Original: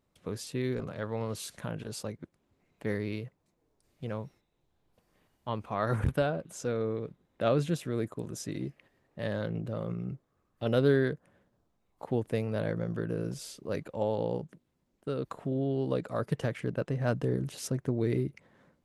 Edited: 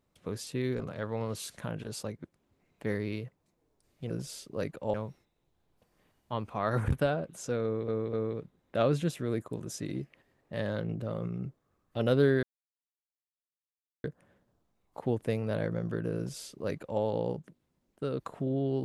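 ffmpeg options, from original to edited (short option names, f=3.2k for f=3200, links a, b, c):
-filter_complex "[0:a]asplit=6[a][b][c][d][e][f];[a]atrim=end=4.102[g];[b]atrim=start=13.218:end=14.062[h];[c]atrim=start=4.098:end=7.042[i];[d]atrim=start=6.788:end=7.042[j];[e]atrim=start=6.788:end=11.09,asetpts=PTS-STARTPTS,afade=t=out:st=4.298:d=0.004:c=hsin,apad=pad_dur=1.61[k];[f]atrim=start=11.09,asetpts=PTS-STARTPTS,afade=t=in:d=0.004:c=hsin[l];[g][h]acrossfade=d=0.004:c1=hsin:c2=hsin[m];[m][i]acrossfade=d=0.004:c1=hsin:c2=hsin[n];[n][j]acrossfade=d=0.004:c1=hsin:c2=hsin[o];[k][l]concat=n=2:v=0:a=1[p];[o][p]acrossfade=d=0.004:c1=hsin:c2=hsin"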